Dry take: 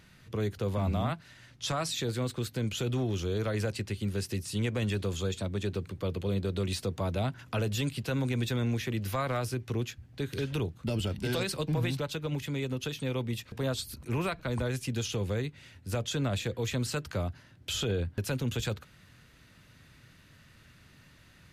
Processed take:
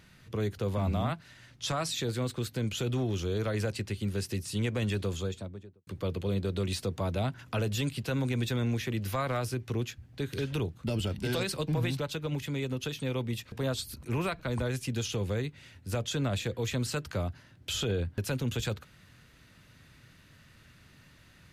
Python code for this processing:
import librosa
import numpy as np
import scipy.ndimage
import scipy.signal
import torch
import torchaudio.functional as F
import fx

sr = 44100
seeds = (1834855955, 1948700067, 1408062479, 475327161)

y = fx.studio_fade_out(x, sr, start_s=5.03, length_s=0.84)